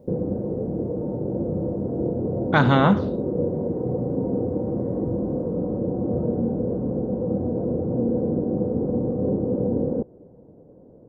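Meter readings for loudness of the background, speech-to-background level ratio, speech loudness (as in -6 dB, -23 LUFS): -25.5 LUFS, 5.5 dB, -20.0 LUFS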